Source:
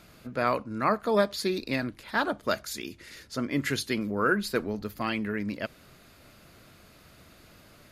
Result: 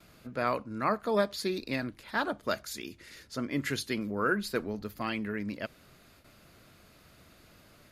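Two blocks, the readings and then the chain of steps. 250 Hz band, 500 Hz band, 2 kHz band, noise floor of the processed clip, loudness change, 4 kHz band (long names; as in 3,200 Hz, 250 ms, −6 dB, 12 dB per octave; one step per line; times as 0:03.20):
−3.5 dB, −3.5 dB, −3.5 dB, −59 dBFS, −3.5 dB, −3.5 dB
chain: noise gate with hold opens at −45 dBFS
level −3.5 dB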